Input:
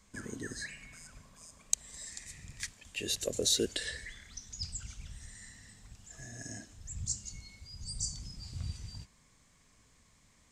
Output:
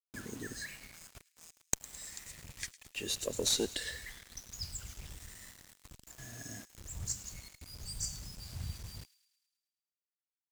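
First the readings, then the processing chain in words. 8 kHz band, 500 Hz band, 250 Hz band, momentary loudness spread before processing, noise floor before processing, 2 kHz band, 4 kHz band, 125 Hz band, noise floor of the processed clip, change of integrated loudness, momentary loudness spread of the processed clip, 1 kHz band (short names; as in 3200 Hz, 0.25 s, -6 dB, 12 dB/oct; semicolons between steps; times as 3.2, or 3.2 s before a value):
-2.0 dB, -2.0 dB, -2.0 dB, 20 LU, -66 dBFS, -1.5 dB, -2.0 dB, -2.0 dB, under -85 dBFS, -2.0 dB, 19 LU, +4.0 dB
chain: requantised 8-bit, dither none; tube stage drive 14 dB, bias 0.75; thin delay 0.107 s, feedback 59%, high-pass 2400 Hz, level -17.5 dB; gain +2.5 dB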